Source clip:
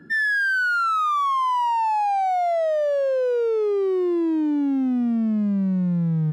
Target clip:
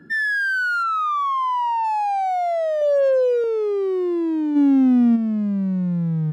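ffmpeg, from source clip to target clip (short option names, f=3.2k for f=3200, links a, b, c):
-filter_complex "[0:a]asplit=3[a][b][c];[a]afade=t=out:st=0.82:d=0.02[d];[b]aemphasis=mode=reproduction:type=50fm,afade=t=in:st=0.82:d=0.02,afade=t=out:st=1.83:d=0.02[e];[c]afade=t=in:st=1.83:d=0.02[f];[d][e][f]amix=inputs=3:normalize=0,asettb=1/sr,asplit=3[g][h][i];[g]atrim=end=2.814[j];[h]atrim=start=2.81:end=3.44,asetpts=PTS-STARTPTS,afade=t=in:d=0.004:c=qsin,afade=t=out:st=0.626:d=0.004:c=qsin,aecho=1:1:3.7:0.75,atrim=end_sample=27783[k];[i]atrim=start=3.436[l];[j][k]acrossfade=d=0.004:c1=hsin:c2=qsin[m];[m][l]acrossfade=d=0.004:c1=qsin:c2=hsin,asplit=3[n][o][p];[n]afade=t=out:st=4.55:d=0.02[q];[o]acontrast=82,afade=t=in:st=4.55:d=0.02,afade=t=out:st=5.15:d=0.02[r];[p]afade=t=in:st=5.15:d=0.02[s];[q][r][s]amix=inputs=3:normalize=0"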